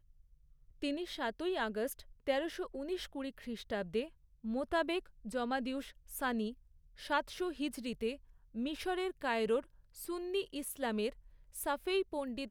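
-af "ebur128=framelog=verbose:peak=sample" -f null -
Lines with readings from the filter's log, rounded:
Integrated loudness:
  I:         -37.9 LUFS
  Threshold: -48.3 LUFS
Loudness range:
  LRA:         1.5 LU
  Threshold: -58.3 LUFS
  LRA low:   -39.1 LUFS
  LRA high:  -37.6 LUFS
Sample peak:
  Peak:      -20.2 dBFS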